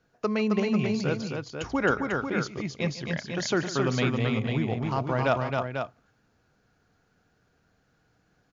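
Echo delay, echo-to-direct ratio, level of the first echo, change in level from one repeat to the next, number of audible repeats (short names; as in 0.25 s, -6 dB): 0.148 s, -2.0 dB, -16.0 dB, no steady repeat, 3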